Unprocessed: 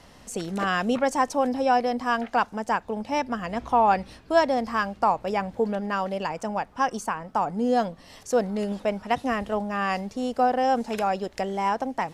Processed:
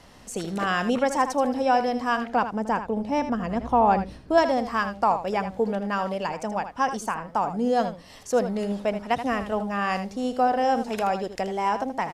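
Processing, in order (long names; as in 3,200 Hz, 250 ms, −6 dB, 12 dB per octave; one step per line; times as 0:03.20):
0:02.27–0:04.38: tilt shelving filter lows +5 dB, about 770 Hz
single-tap delay 79 ms −10.5 dB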